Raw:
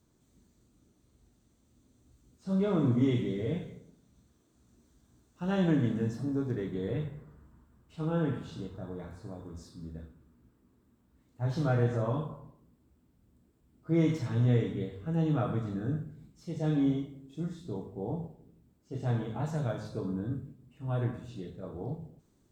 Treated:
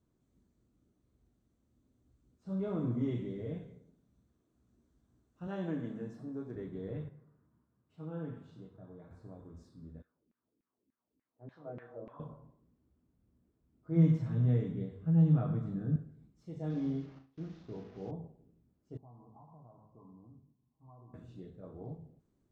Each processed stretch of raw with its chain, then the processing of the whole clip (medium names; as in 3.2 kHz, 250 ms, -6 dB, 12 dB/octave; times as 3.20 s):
5.47–6.56 s: high-pass 120 Hz + bass shelf 170 Hz -7.5 dB
7.09–9.11 s: high-pass 83 Hz 24 dB/octave + flange 1.9 Hz, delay 5.3 ms, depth 2.2 ms, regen -71%
10.02–12.20 s: peaking EQ 3.8 kHz +4.5 dB 0.23 oct + LFO band-pass saw down 3.4 Hz 250–2400 Hz
13.96–15.96 s: high-pass 41 Hz + peaking EQ 160 Hz +12.5 dB 0.59 oct
16.70–18.11 s: one-bit delta coder 32 kbps, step -44 dBFS + gate with hold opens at -38 dBFS, closes at -43 dBFS + flutter echo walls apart 6.4 m, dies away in 0.27 s
18.97–21.14 s: resonant low shelf 720 Hz -11.5 dB, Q 1.5 + compression 3:1, threshold -43 dBFS + rippled Chebyshev low-pass 1.1 kHz, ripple 3 dB
whole clip: treble shelf 2.4 kHz -11 dB; band-stop 880 Hz, Q 22; trim -7 dB